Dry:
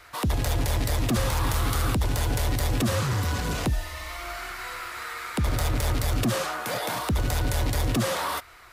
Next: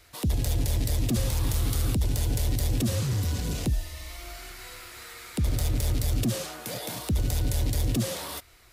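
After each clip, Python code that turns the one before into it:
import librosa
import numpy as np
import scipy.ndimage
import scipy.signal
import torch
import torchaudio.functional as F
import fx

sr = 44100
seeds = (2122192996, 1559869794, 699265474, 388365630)

y = fx.peak_eq(x, sr, hz=1200.0, db=-14.0, octaves=2.0)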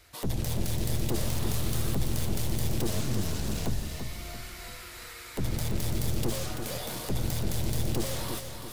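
y = np.minimum(x, 2.0 * 10.0 ** (-30.5 / 20.0) - x)
y = fx.echo_feedback(y, sr, ms=337, feedback_pct=44, wet_db=-7.0)
y = y * librosa.db_to_amplitude(-1.5)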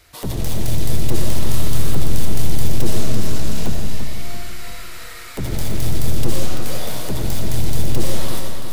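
y = fx.rev_freeverb(x, sr, rt60_s=1.1, hf_ratio=0.65, predelay_ms=45, drr_db=3.0)
y = y * librosa.db_to_amplitude(5.5)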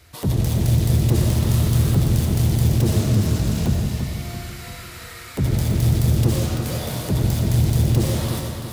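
y = scipy.signal.sosfilt(scipy.signal.butter(2, 65.0, 'highpass', fs=sr, output='sos'), x)
y = fx.peak_eq(y, sr, hz=83.0, db=10.5, octaves=2.9)
y = y * librosa.db_to_amplitude(-1.5)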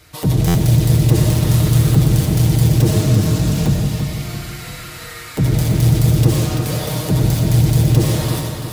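y = x + 0.51 * np.pad(x, (int(6.5 * sr / 1000.0), 0))[:len(x)]
y = fx.buffer_glitch(y, sr, at_s=(0.47,), block=512, repeats=6)
y = y * librosa.db_to_amplitude(4.0)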